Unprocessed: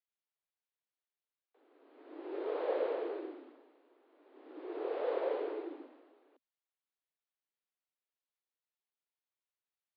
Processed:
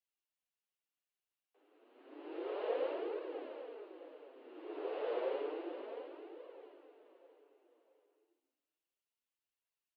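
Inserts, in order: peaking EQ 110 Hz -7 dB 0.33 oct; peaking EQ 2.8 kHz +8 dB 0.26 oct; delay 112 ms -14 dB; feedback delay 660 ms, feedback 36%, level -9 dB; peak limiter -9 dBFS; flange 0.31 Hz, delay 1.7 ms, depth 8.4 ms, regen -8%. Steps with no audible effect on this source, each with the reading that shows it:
peaking EQ 110 Hz: input has nothing below 240 Hz; peak limiter -9 dBFS: peak at its input -22.5 dBFS

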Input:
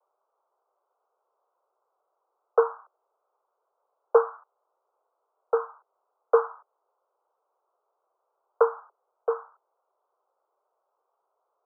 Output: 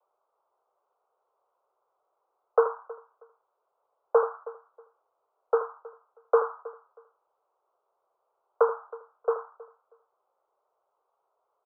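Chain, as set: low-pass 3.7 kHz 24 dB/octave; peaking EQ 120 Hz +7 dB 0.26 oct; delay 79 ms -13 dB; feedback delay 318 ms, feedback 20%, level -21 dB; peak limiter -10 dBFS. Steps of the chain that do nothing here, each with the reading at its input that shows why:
low-pass 3.7 kHz: input has nothing above 1.5 kHz; peaking EQ 120 Hz: input has nothing below 380 Hz

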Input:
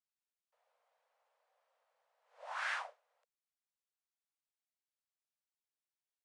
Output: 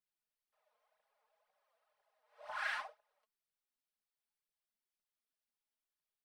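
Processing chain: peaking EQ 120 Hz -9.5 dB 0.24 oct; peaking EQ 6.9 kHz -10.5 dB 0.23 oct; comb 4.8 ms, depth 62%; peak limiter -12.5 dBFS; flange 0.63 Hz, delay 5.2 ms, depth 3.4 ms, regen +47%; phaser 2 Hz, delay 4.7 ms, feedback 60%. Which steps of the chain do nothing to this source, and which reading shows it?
peaking EQ 120 Hz: input has nothing below 450 Hz; peak limiter -12.5 dBFS: peak at its input -24.0 dBFS

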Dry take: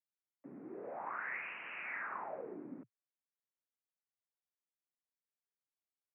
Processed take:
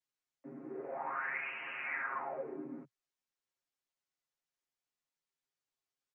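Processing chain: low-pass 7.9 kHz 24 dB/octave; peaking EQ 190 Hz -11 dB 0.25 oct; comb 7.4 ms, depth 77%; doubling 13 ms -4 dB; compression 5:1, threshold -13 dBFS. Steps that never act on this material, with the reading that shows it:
low-pass 7.9 kHz: input has nothing above 3 kHz; compression, threshold -13 dBFS: peak at its input -26.0 dBFS

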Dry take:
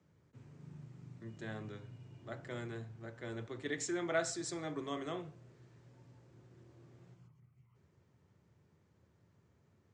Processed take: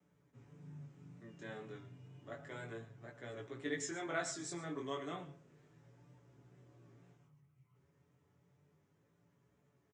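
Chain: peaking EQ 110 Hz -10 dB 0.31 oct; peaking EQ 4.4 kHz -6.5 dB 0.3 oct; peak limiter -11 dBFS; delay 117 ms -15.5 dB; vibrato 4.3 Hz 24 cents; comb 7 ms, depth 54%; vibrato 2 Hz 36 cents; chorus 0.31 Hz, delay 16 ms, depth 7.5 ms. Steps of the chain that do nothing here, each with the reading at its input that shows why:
peak limiter -11 dBFS: peak at its input -21.5 dBFS

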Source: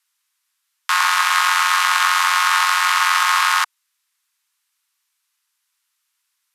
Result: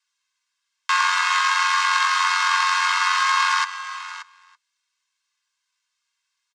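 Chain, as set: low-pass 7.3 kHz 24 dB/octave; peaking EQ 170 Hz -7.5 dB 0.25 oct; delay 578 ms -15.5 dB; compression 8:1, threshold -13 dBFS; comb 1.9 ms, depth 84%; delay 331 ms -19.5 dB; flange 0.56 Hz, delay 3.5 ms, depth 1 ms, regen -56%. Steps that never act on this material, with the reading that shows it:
peaking EQ 170 Hz: input has nothing below 720 Hz

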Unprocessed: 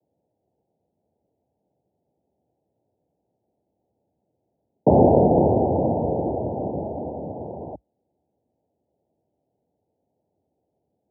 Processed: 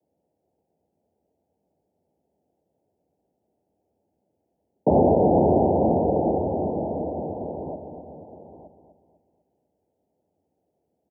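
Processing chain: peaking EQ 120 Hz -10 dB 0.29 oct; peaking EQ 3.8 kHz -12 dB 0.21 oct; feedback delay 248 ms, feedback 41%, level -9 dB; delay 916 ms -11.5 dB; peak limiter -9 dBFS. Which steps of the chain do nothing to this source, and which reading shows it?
peaking EQ 3.8 kHz: input has nothing above 1 kHz

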